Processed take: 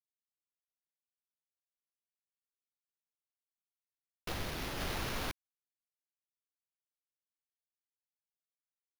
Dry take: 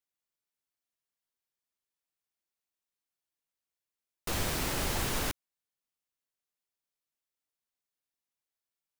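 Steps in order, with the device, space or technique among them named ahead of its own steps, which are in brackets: 4.33–4.80 s: Chebyshev low-pass 4.8 kHz, order 2; early companding sampler (sample-rate reducer 8 kHz, jitter 0%; companded quantiser 6-bit); trim -5.5 dB

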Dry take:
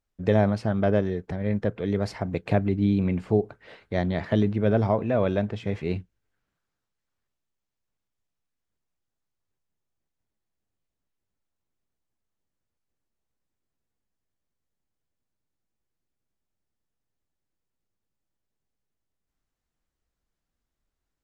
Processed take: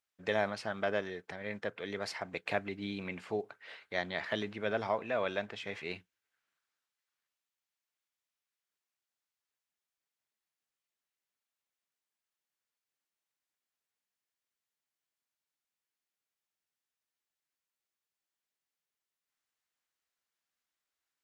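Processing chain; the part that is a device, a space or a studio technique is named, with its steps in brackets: filter by subtraction (in parallel: low-pass 2.1 kHz 12 dB/octave + polarity flip); on the sum: trim -1 dB

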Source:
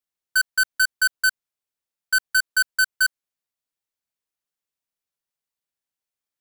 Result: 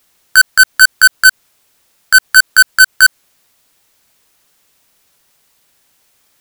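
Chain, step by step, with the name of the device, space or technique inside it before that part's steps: loud club master (compression 2.5:1, threshold -22 dBFS, peak gain reduction 3.5 dB; hard clipper -23 dBFS, distortion -20 dB; loudness maximiser +33 dB); trim -1 dB

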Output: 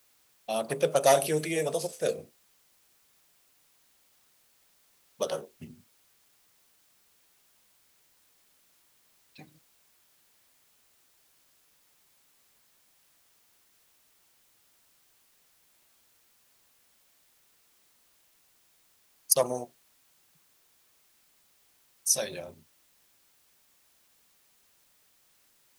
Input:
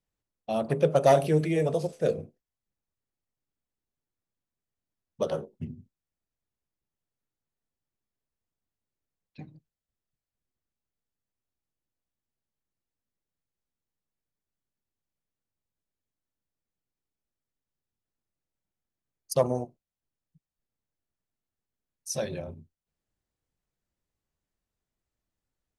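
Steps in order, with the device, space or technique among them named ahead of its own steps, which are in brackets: turntable without a phono preamp (RIAA curve recording; white noise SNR 29 dB)

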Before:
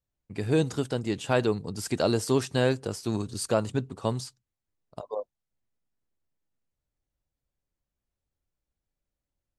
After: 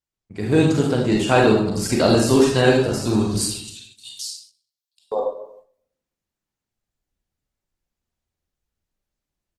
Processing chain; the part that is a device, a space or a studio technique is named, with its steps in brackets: 3.44–5.12 s: inverse Chebyshev high-pass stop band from 1.3 kHz, stop band 50 dB; speakerphone in a meeting room (reverberation RT60 0.75 s, pre-delay 30 ms, DRR -1.5 dB; speakerphone echo 90 ms, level -26 dB; level rider gain up to 8.5 dB; gate -47 dBFS, range -8 dB; Opus 16 kbps 48 kHz)

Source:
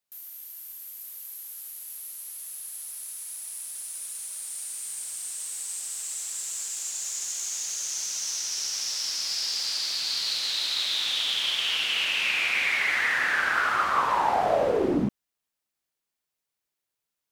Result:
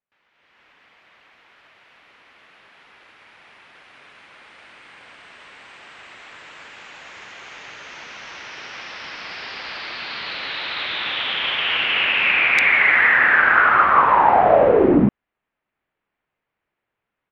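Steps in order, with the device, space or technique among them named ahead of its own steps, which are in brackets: action camera in a waterproof case (low-pass 2.4 kHz 24 dB/octave; level rider gain up to 13 dB; AAC 96 kbps 48 kHz)

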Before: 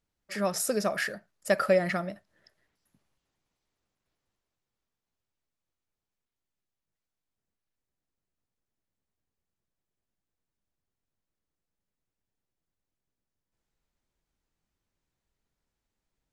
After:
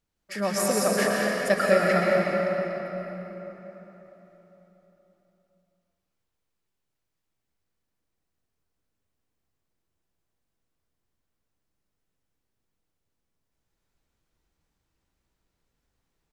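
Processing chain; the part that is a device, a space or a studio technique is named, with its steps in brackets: cave (delay 217 ms -10 dB; reverberation RT60 4.0 s, pre-delay 108 ms, DRR -3.5 dB); trim +1 dB

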